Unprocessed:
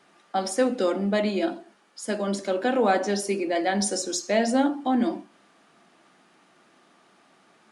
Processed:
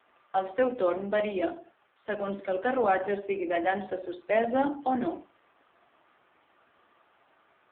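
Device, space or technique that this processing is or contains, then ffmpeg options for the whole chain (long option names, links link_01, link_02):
telephone: -filter_complex "[0:a]asplit=3[link_01][link_02][link_03];[link_01]afade=type=out:start_time=2.11:duration=0.02[link_04];[link_02]asubboost=boost=4:cutoff=190,afade=type=in:start_time=2.11:duration=0.02,afade=type=out:start_time=3.05:duration=0.02[link_05];[link_03]afade=type=in:start_time=3.05:duration=0.02[link_06];[link_04][link_05][link_06]amix=inputs=3:normalize=0,highpass=370,lowpass=3500" -ar 8000 -c:a libopencore_amrnb -b:a 5900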